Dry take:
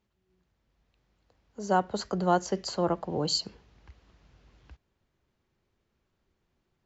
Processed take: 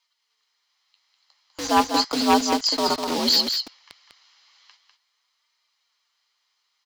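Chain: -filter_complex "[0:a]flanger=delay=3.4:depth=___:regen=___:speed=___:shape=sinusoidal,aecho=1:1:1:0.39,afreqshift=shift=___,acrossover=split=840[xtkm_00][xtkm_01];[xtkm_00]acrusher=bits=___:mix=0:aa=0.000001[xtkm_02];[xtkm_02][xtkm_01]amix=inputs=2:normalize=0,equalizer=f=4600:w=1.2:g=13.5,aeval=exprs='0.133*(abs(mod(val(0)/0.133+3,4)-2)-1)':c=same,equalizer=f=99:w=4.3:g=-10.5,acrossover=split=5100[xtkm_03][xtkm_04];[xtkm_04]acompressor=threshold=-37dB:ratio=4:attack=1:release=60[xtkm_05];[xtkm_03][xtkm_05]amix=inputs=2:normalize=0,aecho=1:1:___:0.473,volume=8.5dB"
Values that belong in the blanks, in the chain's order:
9.2, 46, 0.36, 76, 6, 199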